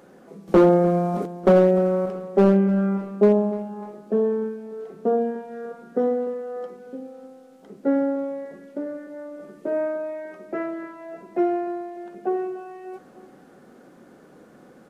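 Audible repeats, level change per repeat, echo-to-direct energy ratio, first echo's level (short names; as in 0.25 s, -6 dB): 3, -5.0 dB, -15.5 dB, -17.0 dB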